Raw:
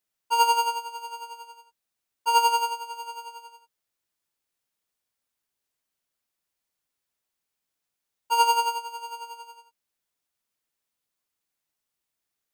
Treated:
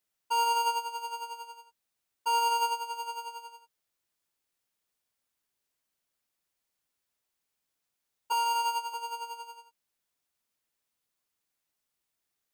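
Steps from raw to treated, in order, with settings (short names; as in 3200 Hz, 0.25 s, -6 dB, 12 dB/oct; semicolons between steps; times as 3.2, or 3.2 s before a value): 8.32–8.94 HPF 540 Hz 24 dB/oct; limiter -20 dBFS, peak gain reduction 11.5 dB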